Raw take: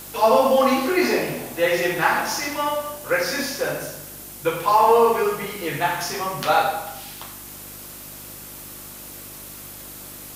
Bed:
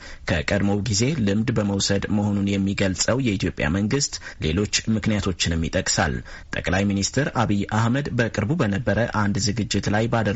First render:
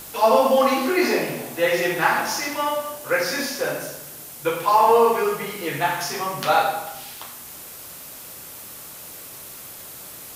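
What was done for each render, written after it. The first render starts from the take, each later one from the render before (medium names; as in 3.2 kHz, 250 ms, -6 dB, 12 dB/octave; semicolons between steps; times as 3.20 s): de-hum 50 Hz, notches 11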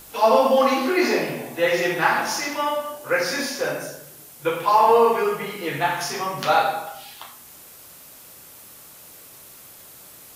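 noise print and reduce 6 dB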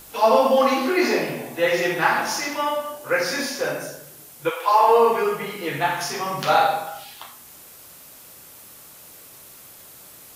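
4.49–5.10 s: high-pass 620 Hz -> 190 Hz 24 dB/octave; 6.21–7.04 s: doubling 48 ms -6 dB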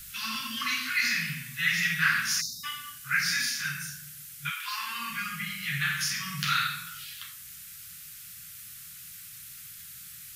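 inverse Chebyshev band-stop 320–810 Hz, stop band 50 dB; 2.41–2.64 s: spectral selection erased 260–3600 Hz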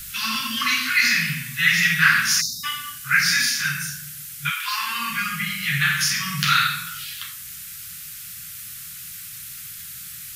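trim +8.5 dB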